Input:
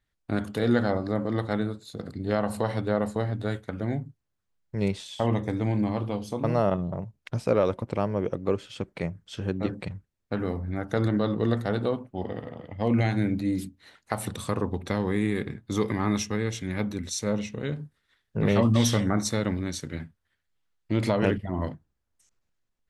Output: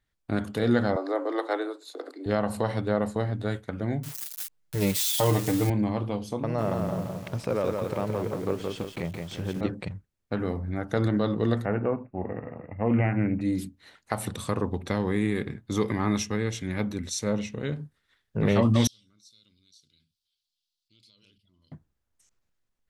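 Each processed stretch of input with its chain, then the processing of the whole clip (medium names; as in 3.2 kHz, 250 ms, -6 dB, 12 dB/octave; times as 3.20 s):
0.96–2.26 s: steep high-pass 280 Hz 96 dB/octave + peaking EQ 860 Hz +4.5 dB 1.6 oct
4.03–5.70 s: zero-crossing glitches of -23 dBFS + comb 6.6 ms, depth 97%
6.41–9.61 s: compression 2:1, threshold -26 dBFS + bit-crushed delay 171 ms, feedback 55%, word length 8-bit, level -3.5 dB
11.65–13.41 s: brick-wall FIR low-pass 2.8 kHz + loudspeaker Doppler distortion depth 0.16 ms
18.87–21.72 s: inverse Chebyshev high-pass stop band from 2 kHz, stop band 50 dB + distance through air 410 m + level flattener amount 50%
whole clip: none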